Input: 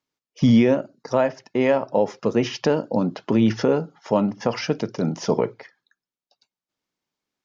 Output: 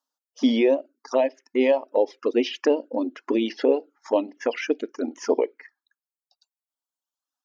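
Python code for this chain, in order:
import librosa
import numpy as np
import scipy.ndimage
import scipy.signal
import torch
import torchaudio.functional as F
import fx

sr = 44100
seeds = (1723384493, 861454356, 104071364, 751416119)

y = fx.dereverb_blind(x, sr, rt60_s=1.8)
y = fx.env_phaser(y, sr, low_hz=380.0, high_hz=1400.0, full_db=-18.5)
y = fx.brickwall_highpass(y, sr, low_hz=240.0)
y = y * librosa.db_to_amplitude(2.5)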